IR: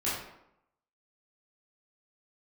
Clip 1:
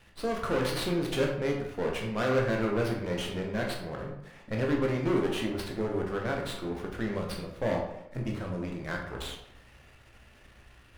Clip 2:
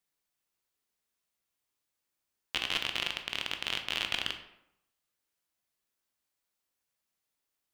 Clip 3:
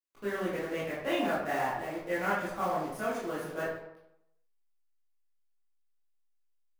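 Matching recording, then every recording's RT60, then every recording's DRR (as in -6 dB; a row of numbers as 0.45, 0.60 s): 3; 0.80, 0.80, 0.80 s; -0.5, 5.0, -10.0 dB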